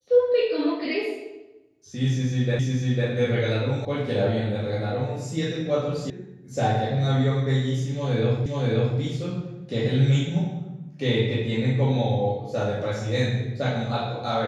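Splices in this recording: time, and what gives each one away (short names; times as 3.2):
2.59 repeat of the last 0.5 s
3.85 sound cut off
6.1 sound cut off
8.46 repeat of the last 0.53 s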